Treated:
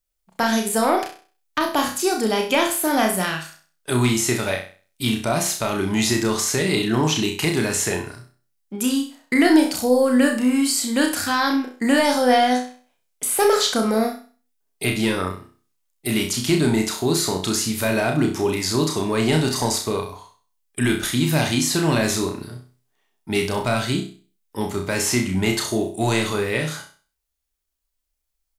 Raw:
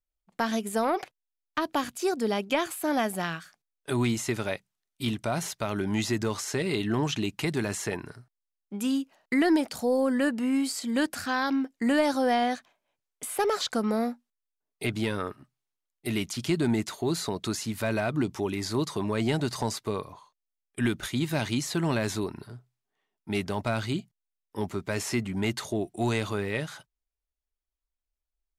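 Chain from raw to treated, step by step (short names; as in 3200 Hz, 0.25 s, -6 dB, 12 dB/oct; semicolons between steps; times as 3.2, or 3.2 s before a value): high shelf 4600 Hz +7.5 dB; doubler 44 ms -11 dB; flutter echo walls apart 5.5 m, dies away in 0.39 s; gain +5.5 dB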